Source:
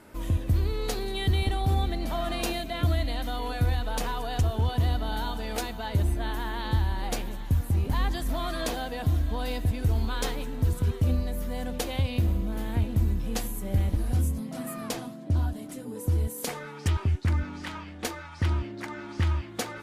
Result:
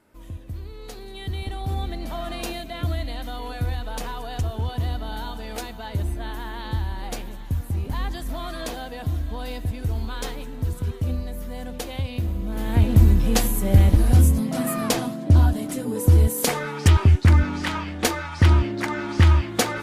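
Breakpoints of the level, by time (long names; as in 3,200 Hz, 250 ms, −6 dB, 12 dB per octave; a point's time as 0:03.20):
0:00.69 −10 dB
0:01.90 −1 dB
0:12.33 −1 dB
0:12.91 +10.5 dB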